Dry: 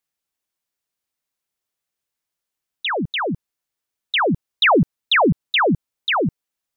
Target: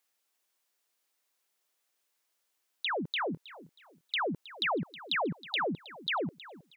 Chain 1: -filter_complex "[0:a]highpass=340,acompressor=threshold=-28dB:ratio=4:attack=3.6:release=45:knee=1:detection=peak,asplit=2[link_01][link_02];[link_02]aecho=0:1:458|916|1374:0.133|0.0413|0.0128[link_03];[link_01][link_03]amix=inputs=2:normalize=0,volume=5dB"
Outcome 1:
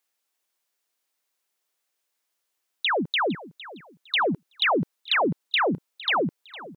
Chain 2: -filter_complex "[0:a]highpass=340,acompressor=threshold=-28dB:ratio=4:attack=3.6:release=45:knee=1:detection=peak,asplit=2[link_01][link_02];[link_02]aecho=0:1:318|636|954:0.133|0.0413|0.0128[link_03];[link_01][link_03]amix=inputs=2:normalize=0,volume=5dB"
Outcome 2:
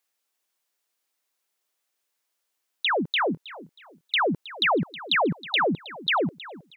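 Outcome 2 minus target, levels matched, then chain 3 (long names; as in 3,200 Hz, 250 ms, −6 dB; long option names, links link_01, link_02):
downward compressor: peak gain reduction −8.5 dB
-filter_complex "[0:a]highpass=340,acompressor=threshold=-39.5dB:ratio=4:attack=3.6:release=45:knee=1:detection=peak,asplit=2[link_01][link_02];[link_02]aecho=0:1:318|636|954:0.133|0.0413|0.0128[link_03];[link_01][link_03]amix=inputs=2:normalize=0,volume=5dB"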